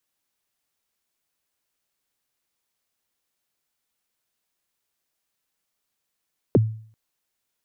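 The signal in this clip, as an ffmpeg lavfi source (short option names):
-f lavfi -i "aevalsrc='0.316*pow(10,-3*t/0.51)*sin(2*PI*(540*0.027/log(110/540)*(exp(log(110/540)*min(t,0.027)/0.027)-1)+110*max(t-0.027,0)))':d=0.39:s=44100"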